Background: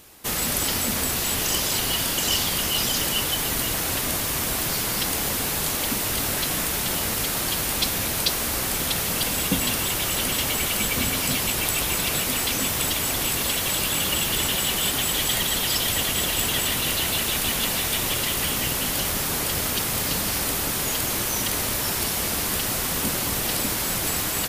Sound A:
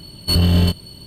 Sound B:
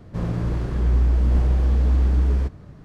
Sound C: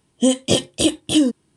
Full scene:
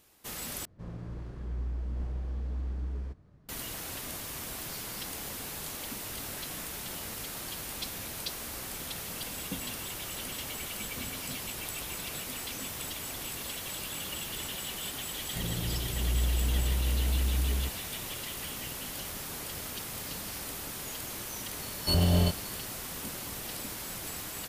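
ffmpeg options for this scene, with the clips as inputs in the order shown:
ffmpeg -i bed.wav -i cue0.wav -i cue1.wav -filter_complex "[2:a]asplit=2[link_01][link_02];[0:a]volume=-14dB[link_03];[link_02]asuperstop=centerf=2200:order=20:qfactor=0.59[link_04];[1:a]equalizer=frequency=670:width=1.5:gain=8.5[link_05];[link_03]asplit=2[link_06][link_07];[link_06]atrim=end=0.654[link_08];[link_01]atrim=end=2.84,asetpts=PTS-STARTPTS,volume=-16.5dB[link_09];[link_07]atrim=start=3.486[link_10];[link_04]atrim=end=2.84,asetpts=PTS-STARTPTS,volume=-10.5dB,afade=type=in:duration=0.004:curve=hsin,afade=type=out:start_time=2.836:duration=0.004:curve=hsin,adelay=15210[link_11];[link_05]atrim=end=1.06,asetpts=PTS-STARTPTS,volume=-10dB,afade=type=in:duration=0.004:curve=hsin,afade=type=out:start_time=1.056:duration=0.004:curve=hsin,adelay=21590[link_12];[link_08][link_09]acrossfade=duration=0.004:curve1=hsin:curve2=hsin[link_13];[link_13][link_10]acrossfade=duration=0.004:curve1=hsin:curve2=hsin[link_14];[link_14][link_11][link_12]amix=inputs=3:normalize=0" out.wav

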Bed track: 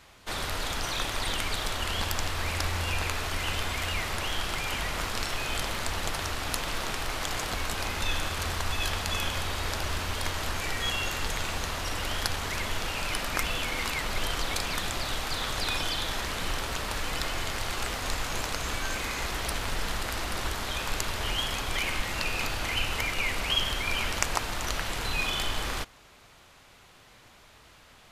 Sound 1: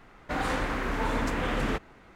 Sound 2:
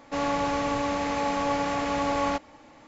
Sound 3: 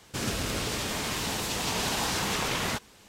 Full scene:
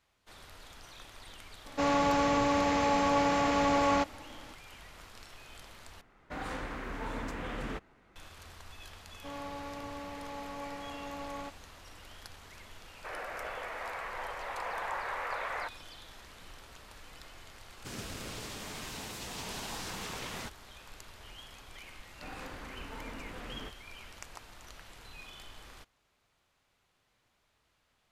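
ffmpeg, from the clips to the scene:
ffmpeg -i bed.wav -i cue0.wav -i cue1.wav -i cue2.wav -filter_complex "[2:a]asplit=2[link_01][link_02];[1:a]asplit=2[link_03][link_04];[3:a]asplit=2[link_05][link_06];[0:a]volume=-20dB[link_07];[link_01]aeval=exprs='0.188*sin(PI/2*1.41*val(0)/0.188)':channel_layout=same[link_08];[link_02]lowpass=5900[link_09];[link_05]highpass=frequency=460:width_type=q:width=0.5412,highpass=frequency=460:width_type=q:width=1.307,lowpass=frequency=2100:width_type=q:width=0.5176,lowpass=frequency=2100:width_type=q:width=0.7071,lowpass=frequency=2100:width_type=q:width=1.932,afreqshift=69[link_10];[link_07]asplit=2[link_11][link_12];[link_11]atrim=end=6.014[link_13];[link_03]atrim=end=2.15,asetpts=PTS-STARTPTS,volume=-9.5dB[link_14];[link_12]atrim=start=8.156[link_15];[link_08]atrim=end=2.87,asetpts=PTS-STARTPTS,volume=-6dB,afade=type=in:duration=0.004:curve=hsin,afade=type=out:start_time=2.866:duration=0.004:curve=hsin,adelay=1660[link_16];[link_09]atrim=end=2.87,asetpts=PTS-STARTPTS,volume=-15.5dB,afade=type=in:duration=0.004:curve=hsin,afade=type=out:start_time=2.866:duration=0.004:curve=hsin,adelay=9120[link_17];[link_10]atrim=end=3.08,asetpts=PTS-STARTPTS,volume=-3dB,afade=type=in:duration=0.004:curve=hsin,afade=type=out:start_time=3.076:duration=0.004:curve=hsin,adelay=12900[link_18];[link_06]atrim=end=3.08,asetpts=PTS-STARTPTS,volume=-11.5dB,afade=type=in:duration=0.004:curve=hsin,afade=type=out:start_time=3.076:duration=0.004:curve=hsin,adelay=17710[link_19];[link_04]atrim=end=2.15,asetpts=PTS-STARTPTS,volume=-16dB,afade=type=in:duration=0.004:curve=hsin,afade=type=out:start_time=2.146:duration=0.004:curve=hsin,adelay=21920[link_20];[link_13][link_14]acrossfade=duration=0.004:curve1=hsin:curve2=hsin[link_21];[link_21][link_15]acrossfade=duration=0.004:curve1=hsin:curve2=hsin[link_22];[link_22][link_16][link_17][link_18][link_19][link_20]amix=inputs=6:normalize=0" out.wav

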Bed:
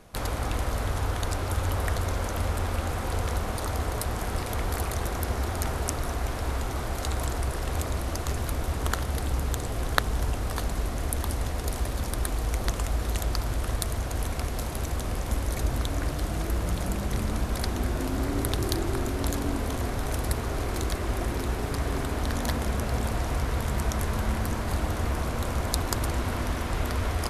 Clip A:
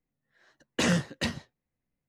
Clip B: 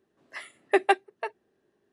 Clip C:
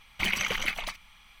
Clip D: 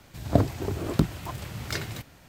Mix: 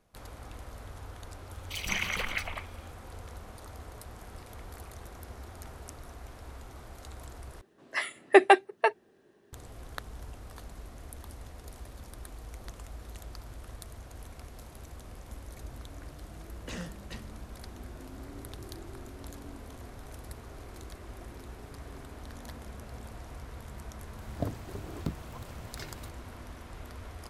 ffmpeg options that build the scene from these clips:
ffmpeg -i bed.wav -i cue0.wav -i cue1.wav -i cue2.wav -i cue3.wav -filter_complex "[0:a]volume=-16.5dB[link_01];[3:a]acrossover=split=380|3000[link_02][link_03][link_04];[link_02]adelay=150[link_05];[link_03]adelay=180[link_06];[link_05][link_06][link_04]amix=inputs=3:normalize=0[link_07];[2:a]alimiter=level_in=13.5dB:limit=-1dB:release=50:level=0:latency=1[link_08];[link_01]asplit=2[link_09][link_10];[link_09]atrim=end=7.614[link_11];[link_08]atrim=end=1.92,asetpts=PTS-STARTPTS,volume=-5dB[link_12];[link_10]atrim=start=9.526[link_13];[link_07]atrim=end=1.4,asetpts=PTS-STARTPTS,volume=-1.5dB,afade=type=in:duration=0.004:curve=hsin,afade=type=out:start_time=1.396:duration=0.004:curve=hsin,adelay=1510[link_14];[1:a]atrim=end=2.08,asetpts=PTS-STARTPTS,volume=-15.5dB,afade=type=in:duration=0.004:curve=hsin,afade=type=out:start_time=2.076:duration=0.004:curve=hsin,adelay=15890[link_15];[4:a]atrim=end=2.28,asetpts=PTS-STARTPTS,volume=-12.5dB,afade=type=in:duration=0.004:curve=hsin,afade=type=out:start_time=2.276:duration=0.004:curve=hsin,adelay=24070[link_16];[link_11][link_12]acrossfade=duration=0.004:curve1=hsin:curve2=hsin[link_17];[link_17][link_13]acrossfade=duration=0.004:curve1=hsin:curve2=hsin[link_18];[link_18][link_14][link_15][link_16]amix=inputs=4:normalize=0" out.wav

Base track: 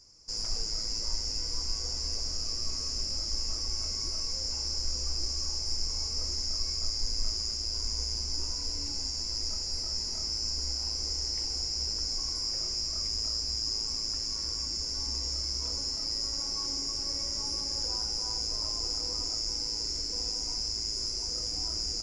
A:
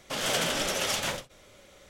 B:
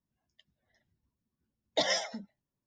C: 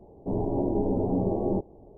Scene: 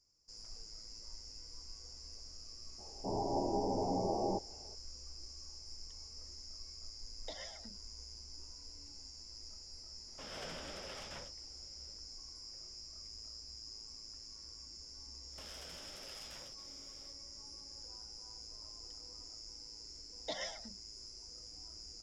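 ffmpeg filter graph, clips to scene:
ffmpeg -i bed.wav -i cue0.wav -i cue1.wav -i cue2.wav -filter_complex "[2:a]asplit=2[link_01][link_02];[1:a]asplit=2[link_03][link_04];[0:a]volume=-18dB[link_05];[3:a]equalizer=frequency=880:width_type=o:width=1.3:gain=15[link_06];[link_01]acompressor=threshold=-46dB:ratio=2:attack=20:release=271:knee=1:detection=peak[link_07];[link_03]aemphasis=mode=reproduction:type=75kf[link_08];[link_04]acompressor=threshold=-41dB:ratio=6:attack=3.2:release=140:knee=1:detection=peak[link_09];[link_06]atrim=end=1.97,asetpts=PTS-STARTPTS,volume=-13.5dB,afade=type=in:duration=0.004:curve=hsin,afade=type=out:start_time=1.966:duration=0.004:curve=hsin,adelay=2780[link_10];[link_07]atrim=end=2.66,asetpts=PTS-STARTPTS,volume=-9.5dB,afade=type=in:duration=0.004:curve=hsin,afade=type=out:start_time=2.656:duration=0.004:curve=hsin,adelay=5510[link_11];[link_08]atrim=end=1.89,asetpts=PTS-STARTPTS,volume=-16.5dB,afade=type=in:duration=0.004:curve=hsin,afade=type=out:start_time=1.886:duration=0.004:curve=hsin,adelay=10080[link_12];[link_09]atrim=end=1.89,asetpts=PTS-STARTPTS,volume=-10.5dB,afade=type=in:duration=0.1,afade=type=out:start_time=1.79:duration=0.1,adelay=15280[link_13];[link_02]atrim=end=2.66,asetpts=PTS-STARTPTS,volume=-12.5dB,afade=type=in:duration=0.004:curve=hsin,afade=type=out:start_time=2.656:duration=0.004:curve=hsin,adelay=18510[link_14];[link_05][link_10][link_11][link_12][link_13][link_14]amix=inputs=6:normalize=0" out.wav

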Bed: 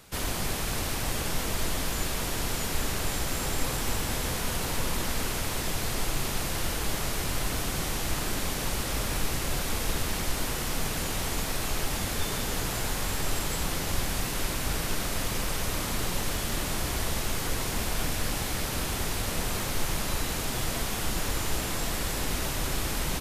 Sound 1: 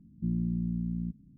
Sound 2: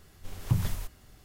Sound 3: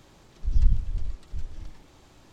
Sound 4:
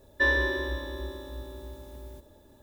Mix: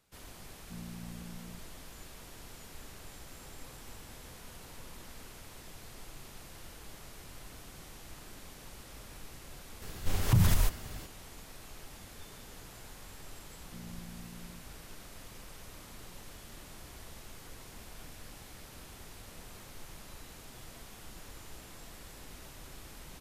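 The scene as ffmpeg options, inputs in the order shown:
ffmpeg -i bed.wav -i cue0.wav -i cue1.wav -filter_complex "[1:a]asplit=2[link_01][link_02];[0:a]volume=-19.5dB[link_03];[2:a]alimiter=level_in=25dB:limit=-1dB:release=50:level=0:latency=1[link_04];[link_01]atrim=end=1.37,asetpts=PTS-STARTPTS,volume=-15dB,afade=type=in:duration=0.004:curve=hsin,afade=type=out:start_time=1.366:duration=0.004:curve=hsin,adelay=480[link_05];[link_04]atrim=end=1.24,asetpts=PTS-STARTPTS,volume=-14.5dB,afade=type=in:duration=0.004:curve=hsin,afade=type=out:start_time=1.236:duration=0.004:curve=hsin,adelay=9820[link_06];[link_02]atrim=end=1.37,asetpts=PTS-STARTPTS,volume=-17.5dB,afade=type=in:duration=0.004:curve=hsin,afade=type=out:start_time=1.366:duration=0.004:curve=hsin,adelay=13500[link_07];[link_03][link_05][link_06][link_07]amix=inputs=4:normalize=0" out.wav

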